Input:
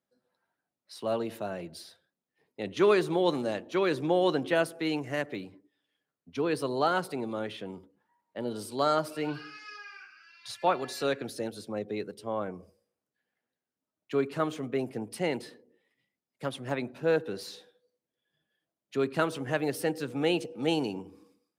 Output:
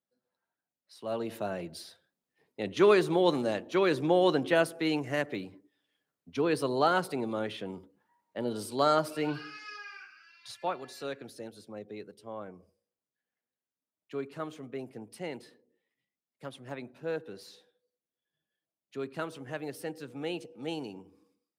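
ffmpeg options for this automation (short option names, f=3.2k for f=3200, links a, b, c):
-af "volume=1dB,afade=t=in:st=1:d=0.41:silence=0.375837,afade=t=out:st=9.93:d=0.84:silence=0.334965"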